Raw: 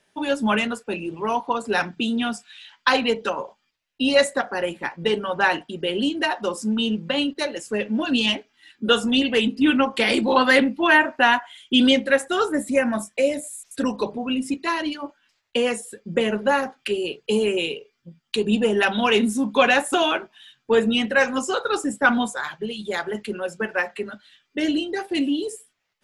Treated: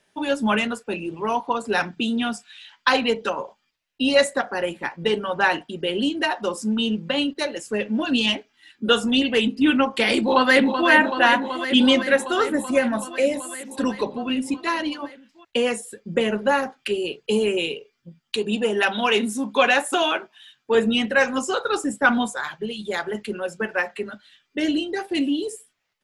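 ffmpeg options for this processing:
ffmpeg -i in.wav -filter_complex "[0:a]asplit=2[link_01][link_02];[link_02]afade=type=in:start_time=10.18:duration=0.01,afade=type=out:start_time=10.88:duration=0.01,aecho=0:1:380|760|1140|1520|1900|2280|2660|3040|3420|3800|4180|4560:0.398107|0.318486|0.254789|0.203831|0.163065|0.130452|0.104361|0.0834891|0.0667913|0.053433|0.0427464|0.0341971[link_03];[link_01][link_03]amix=inputs=2:normalize=0,asettb=1/sr,asplit=3[link_04][link_05][link_06];[link_04]atrim=end=18.364[link_07];[link_05]atrim=start=18.36:end=20.75,asetpts=PTS-STARTPTS,afade=type=in:duration=0.004:curve=qsin,afade=type=out:start_time=2.386:duration=0.004:curve=qsin,lowshelf=frequency=190:gain=-10.5[link_08];[link_06]atrim=start=20.746[link_09];[link_07][link_08]acrossfade=duration=0.004:curve1=hsin:curve2=qsin[link_10];[link_10][link_09]acrossfade=duration=0.004:curve1=qsin:curve2=hsin" out.wav

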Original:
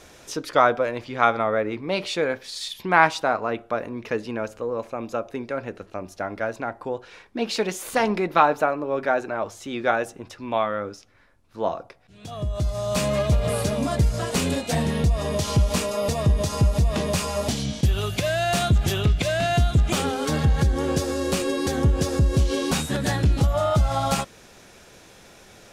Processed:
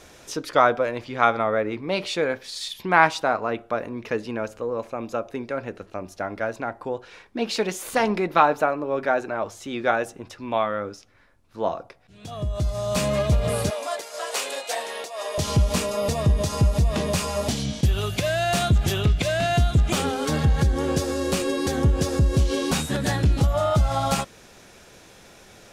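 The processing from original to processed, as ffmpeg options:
ffmpeg -i in.wav -filter_complex "[0:a]asettb=1/sr,asplit=3[link_01][link_02][link_03];[link_01]atrim=end=13.704[link_04];[link_02]atrim=start=13.7:end=15.38,asetpts=PTS-STARTPTS,afade=type=in:duration=0.004:curve=qsin,afade=type=out:start_time=1.676:duration=0.004:curve=qsin,highpass=frequency=520:width=0.5412,highpass=frequency=520:width=1.3066[link_05];[link_03]atrim=start=15.376[link_06];[link_04][link_05]acrossfade=duration=0.004:curve1=hsin:curve2=qsin[link_07];[link_07][link_06]acrossfade=duration=0.004:curve1=qsin:curve2=hsin" out.wav

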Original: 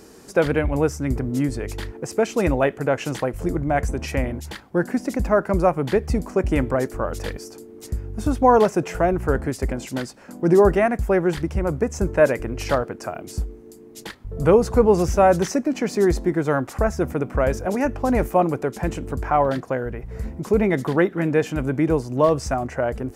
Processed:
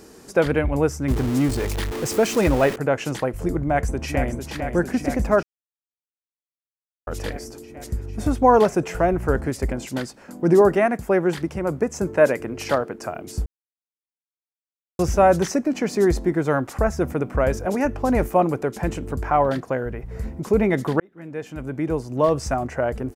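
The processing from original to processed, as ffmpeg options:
ffmpeg -i in.wav -filter_complex "[0:a]asettb=1/sr,asplit=3[link_01][link_02][link_03];[link_01]atrim=end=1.084[link_04];[link_02]atrim=start=1.08:end=2.76,asetpts=PTS-STARTPTS,afade=type=in:duration=0.004:curve=qsin,afade=type=out:start_time=1.676:duration=0.004:curve=qsin,aeval=exprs='val(0)+0.5*0.0562*sgn(val(0))':channel_layout=same[link_05];[link_03]atrim=start=2.756[link_06];[link_04][link_05]acrossfade=duration=0.004:curve1=hsin:curve2=qsin[link_07];[link_07][link_06]acrossfade=duration=0.004:curve1=qsin:curve2=hsin,asplit=2[link_08][link_09];[link_09]afade=type=in:start_time=3.64:duration=0.01,afade=type=out:start_time=4.48:duration=0.01,aecho=0:1:450|900|1350|1800|2250|2700|3150|3600|4050|4500|4950|5400:0.421697|0.337357|0.269886|0.215909|0.172727|0.138182|0.110545|0.0884362|0.0707489|0.0565991|0.0452793|0.0362235[link_10];[link_08][link_10]amix=inputs=2:normalize=0,asettb=1/sr,asplit=3[link_11][link_12][link_13];[link_11]atrim=end=10.614[link_14];[link_12]atrim=start=10.61:end=12.96,asetpts=PTS-STARTPTS,afade=type=in:duration=0.004:curve=qsin,afade=type=out:start_time=2.346:duration=0.004:curve=qsin,highpass=140[link_15];[link_13]atrim=start=12.956[link_16];[link_14][link_15]acrossfade=duration=0.004:curve1=hsin:curve2=qsin[link_17];[link_17][link_16]acrossfade=duration=0.004:curve1=qsin:curve2=hsin,asplit=6[link_18][link_19][link_20][link_21][link_22][link_23];[link_18]atrim=end=5.43,asetpts=PTS-STARTPTS,afade=type=out:start_time=5.426:duration=0.004:curve=hsin[link_24];[link_19]atrim=start=5.43:end=7.07,asetpts=PTS-STARTPTS,volume=0[link_25];[link_20]atrim=start=7.07:end=13.46,asetpts=PTS-STARTPTS,afade=type=in:duration=0.004:curve=hsin,afade=type=out:start_time=6.386:duration=0.004:curve=hsin[link_26];[link_21]atrim=start=13.46:end=14.99,asetpts=PTS-STARTPTS,volume=0[link_27];[link_22]atrim=start=14.99:end=21,asetpts=PTS-STARTPTS,afade=type=in:duration=0.004:curve=hsin,afade=type=out:start_time=6.006:duration=0.004:curve=hsin[link_28];[link_23]atrim=start=21,asetpts=PTS-STARTPTS,afade=type=in:duration=1.47[link_29];[link_24][link_25][link_26][link_27][link_28][link_29]concat=n=6:v=0:a=1" out.wav

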